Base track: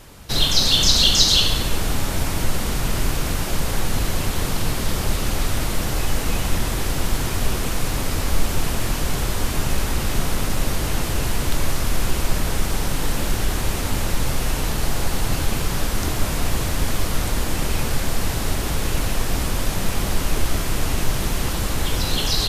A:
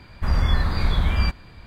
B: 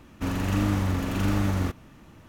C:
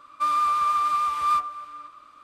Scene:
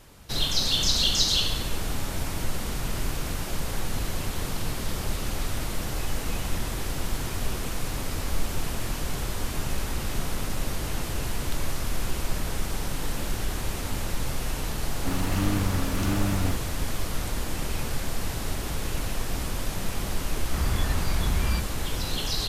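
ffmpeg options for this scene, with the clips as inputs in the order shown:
ffmpeg -i bed.wav -i cue0.wav -i cue1.wav -filter_complex "[0:a]volume=-7.5dB[link_01];[1:a]asoftclip=type=hard:threshold=-13.5dB[link_02];[2:a]atrim=end=2.28,asetpts=PTS-STARTPTS,volume=-2dB,afade=type=in:duration=0.004:curve=hsin,afade=type=out:start_time=2.276:duration=0.004:curve=hsin,adelay=14840[link_03];[link_02]atrim=end=1.66,asetpts=PTS-STARTPTS,volume=-6dB,afade=type=in:duration=0.004:curve=hsin,afade=type=out:start_time=1.656:duration=0.004:curve=hsin,adelay=20300[link_04];[link_01][link_03][link_04]amix=inputs=3:normalize=0" out.wav

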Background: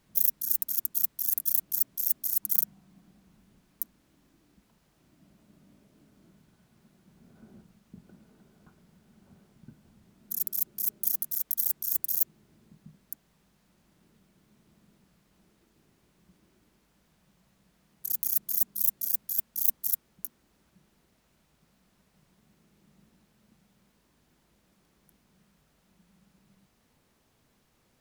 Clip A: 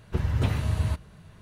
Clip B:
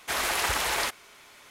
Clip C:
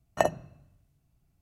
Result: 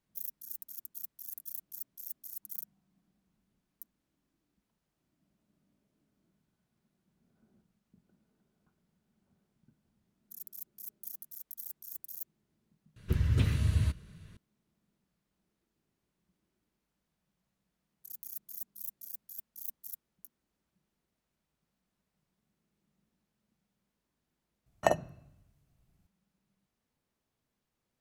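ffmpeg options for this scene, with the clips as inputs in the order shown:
ffmpeg -i bed.wav -i cue0.wav -i cue1.wav -i cue2.wav -filter_complex "[0:a]volume=-16dB[link_01];[1:a]equalizer=frequency=790:width=1.3:gain=-14.5,atrim=end=1.41,asetpts=PTS-STARTPTS,volume=-2dB,afade=type=in:duration=0.004:curve=hsin,afade=type=out:start_time=1.406:duration=0.004:curve=hsin,adelay=12960[link_02];[3:a]atrim=end=1.41,asetpts=PTS-STARTPTS,volume=-2dB,afade=type=in:duration=0.004:curve=hsin,afade=type=out:start_time=1.406:duration=0.004:curve=hsin,adelay=24660[link_03];[link_01][link_02][link_03]amix=inputs=3:normalize=0" out.wav

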